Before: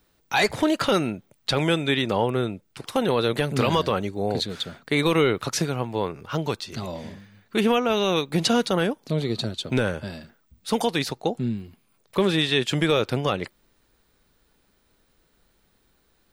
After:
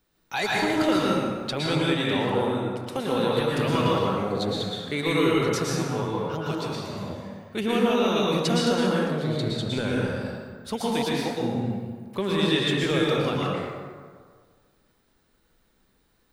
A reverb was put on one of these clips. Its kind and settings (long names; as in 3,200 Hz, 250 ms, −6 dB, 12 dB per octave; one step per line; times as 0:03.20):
dense smooth reverb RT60 1.7 s, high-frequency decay 0.55×, pre-delay 100 ms, DRR −4.5 dB
level −7 dB